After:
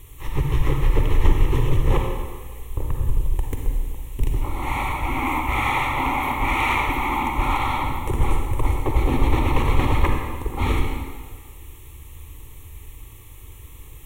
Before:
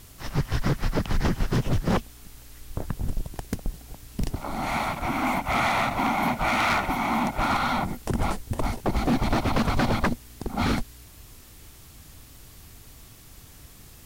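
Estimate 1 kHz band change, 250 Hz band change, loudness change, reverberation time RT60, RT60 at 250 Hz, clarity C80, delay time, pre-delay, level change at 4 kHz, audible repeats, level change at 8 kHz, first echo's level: +2.5 dB, −1.0 dB, +3.0 dB, 1.7 s, 1.5 s, 3.5 dB, no echo audible, 39 ms, −0.5 dB, no echo audible, −1.0 dB, no echo audible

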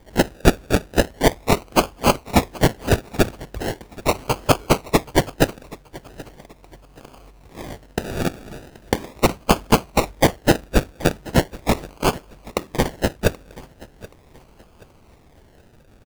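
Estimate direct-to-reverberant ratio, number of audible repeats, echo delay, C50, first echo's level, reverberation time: no reverb audible, 2, 778 ms, no reverb audible, −20.5 dB, no reverb audible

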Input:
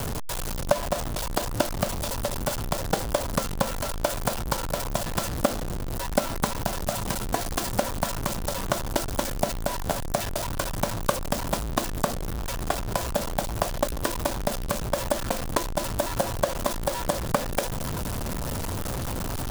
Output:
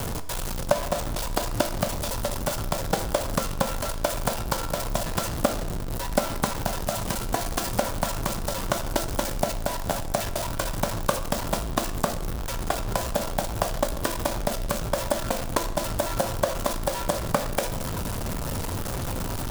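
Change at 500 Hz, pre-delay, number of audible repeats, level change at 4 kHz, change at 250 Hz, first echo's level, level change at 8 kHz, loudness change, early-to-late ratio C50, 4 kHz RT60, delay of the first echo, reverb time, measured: +0.5 dB, 11 ms, no echo audible, +0.5 dB, 0.0 dB, no echo audible, +0.5 dB, +0.5 dB, 12.5 dB, 0.75 s, no echo audible, 0.85 s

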